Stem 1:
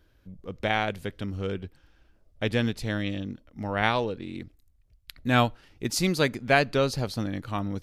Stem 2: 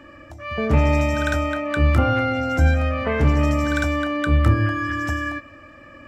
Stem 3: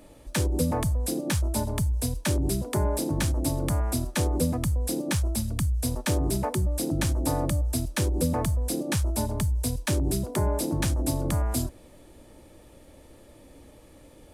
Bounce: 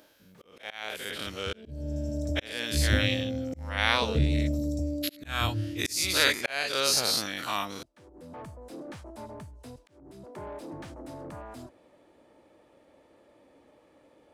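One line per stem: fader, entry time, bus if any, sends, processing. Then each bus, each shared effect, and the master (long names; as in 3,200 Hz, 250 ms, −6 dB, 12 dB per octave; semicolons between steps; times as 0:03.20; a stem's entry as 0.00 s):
−2.5 dB, 0.00 s, no send, every bin's largest magnitude spread in time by 120 ms; spectral tilt +4.5 dB per octave
−9.0 dB, 0.95 s, no send, inverse Chebyshev band-stop filter 1,100–2,800 Hz, stop band 50 dB; low-shelf EQ 230 Hz +6 dB
−16.0 dB, 0.00 s, no send, mid-hump overdrive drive 22 dB, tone 1,200 Hz, clips at −14.5 dBFS; automatic ducking −18 dB, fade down 0.25 s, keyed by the first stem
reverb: not used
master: high-pass filter 86 Hz 6 dB per octave; high-shelf EQ 10,000 Hz −6 dB; volume swells 542 ms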